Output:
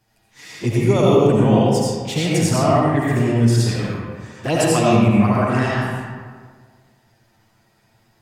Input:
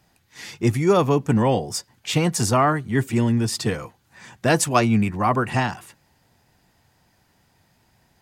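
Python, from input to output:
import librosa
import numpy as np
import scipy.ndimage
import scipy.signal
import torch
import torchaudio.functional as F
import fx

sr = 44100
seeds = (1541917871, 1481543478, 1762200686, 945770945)

y = fx.env_flanger(x, sr, rest_ms=9.2, full_db=-14.5)
y = fx.rev_freeverb(y, sr, rt60_s=1.7, hf_ratio=0.55, predelay_ms=45, drr_db=-6.0)
y = F.gain(torch.from_numpy(y), -1.0).numpy()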